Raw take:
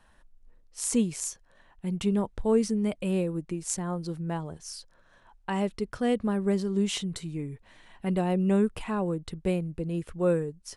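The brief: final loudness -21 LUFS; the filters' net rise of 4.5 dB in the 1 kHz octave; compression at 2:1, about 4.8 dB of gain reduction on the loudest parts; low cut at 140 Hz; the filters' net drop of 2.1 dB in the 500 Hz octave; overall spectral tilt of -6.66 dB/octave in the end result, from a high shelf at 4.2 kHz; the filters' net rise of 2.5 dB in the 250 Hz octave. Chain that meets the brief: high-pass 140 Hz; peaking EQ 250 Hz +5.5 dB; peaking EQ 500 Hz -6 dB; peaking EQ 1 kHz +8 dB; treble shelf 4.2 kHz -9 dB; compression 2:1, threshold -26 dBFS; trim +10 dB

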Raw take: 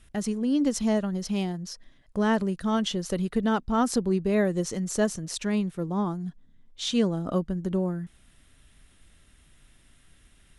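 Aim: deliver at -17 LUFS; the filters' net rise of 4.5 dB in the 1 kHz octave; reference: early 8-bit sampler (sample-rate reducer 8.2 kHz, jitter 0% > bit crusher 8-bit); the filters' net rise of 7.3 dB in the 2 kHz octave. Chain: peaking EQ 1 kHz +3.5 dB; peaking EQ 2 kHz +8 dB; sample-rate reducer 8.2 kHz, jitter 0%; bit crusher 8-bit; trim +9 dB

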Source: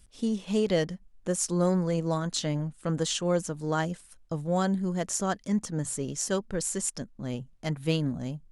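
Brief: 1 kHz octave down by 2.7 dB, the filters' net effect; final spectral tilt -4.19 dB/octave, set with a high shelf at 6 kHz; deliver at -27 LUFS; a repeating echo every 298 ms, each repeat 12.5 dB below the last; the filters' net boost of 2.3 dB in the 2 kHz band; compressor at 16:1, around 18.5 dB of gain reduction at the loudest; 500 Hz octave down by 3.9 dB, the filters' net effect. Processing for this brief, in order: peaking EQ 500 Hz -4 dB; peaking EQ 1 kHz -3.5 dB; peaking EQ 2 kHz +4 dB; treble shelf 6 kHz +4.5 dB; compression 16:1, threshold -41 dBFS; feedback delay 298 ms, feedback 24%, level -12.5 dB; trim +18 dB

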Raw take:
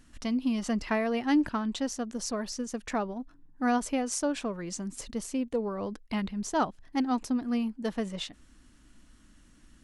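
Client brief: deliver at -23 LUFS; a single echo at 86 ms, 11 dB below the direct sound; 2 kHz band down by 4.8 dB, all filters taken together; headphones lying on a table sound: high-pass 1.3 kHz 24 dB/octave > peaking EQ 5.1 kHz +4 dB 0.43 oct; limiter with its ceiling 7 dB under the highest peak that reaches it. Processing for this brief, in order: peaking EQ 2 kHz -5.5 dB; peak limiter -23 dBFS; high-pass 1.3 kHz 24 dB/octave; peaking EQ 5.1 kHz +4 dB 0.43 oct; delay 86 ms -11 dB; trim +18 dB

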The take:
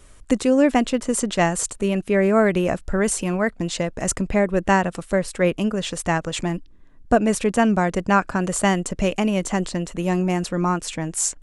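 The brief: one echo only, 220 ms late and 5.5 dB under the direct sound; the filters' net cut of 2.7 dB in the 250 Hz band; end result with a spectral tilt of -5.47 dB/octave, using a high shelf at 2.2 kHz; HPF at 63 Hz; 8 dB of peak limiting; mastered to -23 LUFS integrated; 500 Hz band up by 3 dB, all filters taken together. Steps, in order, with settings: high-pass 63 Hz; peaking EQ 250 Hz -5 dB; peaking EQ 500 Hz +5.5 dB; treble shelf 2.2 kHz -6.5 dB; peak limiter -13 dBFS; delay 220 ms -5.5 dB

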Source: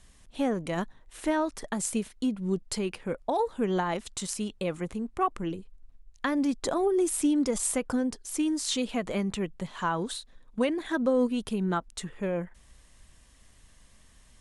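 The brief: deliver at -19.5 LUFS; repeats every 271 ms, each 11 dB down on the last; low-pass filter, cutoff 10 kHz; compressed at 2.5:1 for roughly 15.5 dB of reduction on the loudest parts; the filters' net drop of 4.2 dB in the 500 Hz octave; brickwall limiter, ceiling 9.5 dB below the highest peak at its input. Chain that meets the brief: low-pass 10 kHz; peaking EQ 500 Hz -5.5 dB; compression 2.5:1, threshold -48 dBFS; peak limiter -35.5 dBFS; feedback delay 271 ms, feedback 28%, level -11 dB; trim +26 dB

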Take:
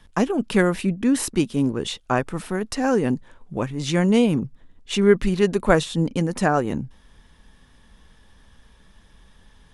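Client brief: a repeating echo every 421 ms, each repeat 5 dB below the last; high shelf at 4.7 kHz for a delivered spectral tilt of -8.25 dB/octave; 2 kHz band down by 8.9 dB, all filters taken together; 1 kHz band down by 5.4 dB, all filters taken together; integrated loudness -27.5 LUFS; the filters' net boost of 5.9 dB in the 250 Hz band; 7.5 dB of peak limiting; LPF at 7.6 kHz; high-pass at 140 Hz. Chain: high-pass 140 Hz; low-pass 7.6 kHz; peaking EQ 250 Hz +8.5 dB; peaking EQ 1 kHz -6.5 dB; peaking EQ 2 kHz -9 dB; treble shelf 4.7 kHz -3.5 dB; peak limiter -9.5 dBFS; feedback delay 421 ms, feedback 56%, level -5 dB; trim -8.5 dB

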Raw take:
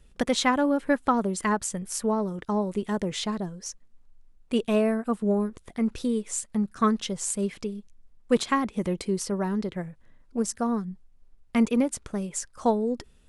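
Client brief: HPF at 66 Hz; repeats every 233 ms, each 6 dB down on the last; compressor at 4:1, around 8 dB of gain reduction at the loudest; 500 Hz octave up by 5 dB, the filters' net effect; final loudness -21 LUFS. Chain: high-pass 66 Hz; peaking EQ 500 Hz +6 dB; compression 4:1, threshold -21 dBFS; feedback delay 233 ms, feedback 50%, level -6 dB; trim +6 dB

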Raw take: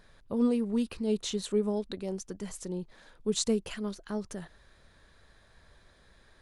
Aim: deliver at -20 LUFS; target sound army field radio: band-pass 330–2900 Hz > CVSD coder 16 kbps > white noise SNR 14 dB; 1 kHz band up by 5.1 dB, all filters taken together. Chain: band-pass 330–2900 Hz; peaking EQ 1 kHz +6.5 dB; CVSD coder 16 kbps; white noise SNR 14 dB; trim +16.5 dB

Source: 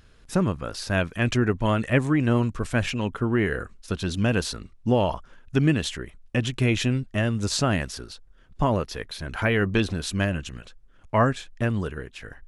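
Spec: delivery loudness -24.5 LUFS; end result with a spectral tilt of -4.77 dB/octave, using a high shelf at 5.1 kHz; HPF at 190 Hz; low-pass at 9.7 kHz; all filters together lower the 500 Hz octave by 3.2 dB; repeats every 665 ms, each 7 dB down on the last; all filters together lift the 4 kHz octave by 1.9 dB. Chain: high-pass 190 Hz; low-pass 9.7 kHz; peaking EQ 500 Hz -4 dB; peaking EQ 4 kHz +4.5 dB; treble shelf 5.1 kHz -4.5 dB; feedback delay 665 ms, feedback 45%, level -7 dB; trim +3 dB

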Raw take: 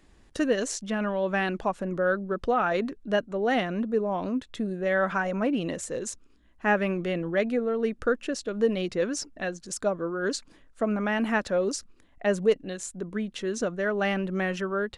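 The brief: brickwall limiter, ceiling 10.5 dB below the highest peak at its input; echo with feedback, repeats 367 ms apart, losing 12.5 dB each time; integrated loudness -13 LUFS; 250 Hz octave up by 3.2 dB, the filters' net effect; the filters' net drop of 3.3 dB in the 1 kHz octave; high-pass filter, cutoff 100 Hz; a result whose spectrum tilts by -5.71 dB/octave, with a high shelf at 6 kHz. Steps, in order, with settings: high-pass 100 Hz; peaking EQ 250 Hz +4.5 dB; peaking EQ 1 kHz -5 dB; treble shelf 6 kHz -6 dB; peak limiter -21 dBFS; feedback delay 367 ms, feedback 24%, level -12.5 dB; trim +17 dB

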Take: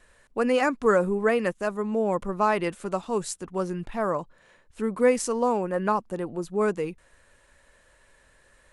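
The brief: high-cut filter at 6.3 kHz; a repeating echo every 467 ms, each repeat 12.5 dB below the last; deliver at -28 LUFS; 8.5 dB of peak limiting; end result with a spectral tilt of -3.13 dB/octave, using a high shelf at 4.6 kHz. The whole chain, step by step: low-pass 6.3 kHz; treble shelf 4.6 kHz +6 dB; peak limiter -17.5 dBFS; feedback delay 467 ms, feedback 24%, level -12.5 dB; trim +0.5 dB

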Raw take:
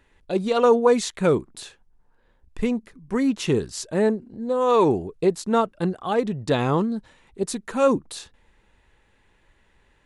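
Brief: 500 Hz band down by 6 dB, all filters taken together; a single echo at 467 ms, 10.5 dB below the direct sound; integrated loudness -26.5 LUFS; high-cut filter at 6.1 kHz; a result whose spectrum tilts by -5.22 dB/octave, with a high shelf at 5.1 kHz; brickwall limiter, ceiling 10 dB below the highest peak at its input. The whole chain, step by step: low-pass 6.1 kHz; peaking EQ 500 Hz -7 dB; treble shelf 5.1 kHz +4 dB; peak limiter -18.5 dBFS; delay 467 ms -10.5 dB; trim +2.5 dB

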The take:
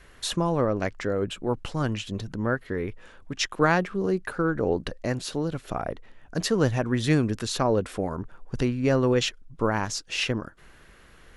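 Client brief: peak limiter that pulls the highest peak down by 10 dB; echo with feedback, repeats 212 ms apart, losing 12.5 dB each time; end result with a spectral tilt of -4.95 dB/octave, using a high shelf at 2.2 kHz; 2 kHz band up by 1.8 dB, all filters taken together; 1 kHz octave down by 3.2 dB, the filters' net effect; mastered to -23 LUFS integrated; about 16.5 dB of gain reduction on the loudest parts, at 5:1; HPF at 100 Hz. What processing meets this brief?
high-pass 100 Hz; peaking EQ 1 kHz -5 dB; peaking EQ 2 kHz +8.5 dB; treble shelf 2.2 kHz -8 dB; compression 5:1, threshold -37 dBFS; peak limiter -35 dBFS; feedback delay 212 ms, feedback 24%, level -12.5 dB; trim +22 dB

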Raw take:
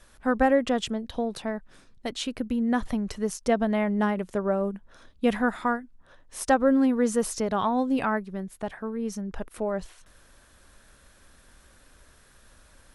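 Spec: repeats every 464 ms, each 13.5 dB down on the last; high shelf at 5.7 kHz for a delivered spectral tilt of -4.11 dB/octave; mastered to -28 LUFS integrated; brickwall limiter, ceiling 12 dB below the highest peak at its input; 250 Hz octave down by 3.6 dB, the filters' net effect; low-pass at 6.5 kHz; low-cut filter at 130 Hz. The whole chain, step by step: high-pass 130 Hz; low-pass 6.5 kHz; peaking EQ 250 Hz -3.5 dB; treble shelf 5.7 kHz +9 dB; peak limiter -22 dBFS; feedback delay 464 ms, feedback 21%, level -13.5 dB; trim +4.5 dB

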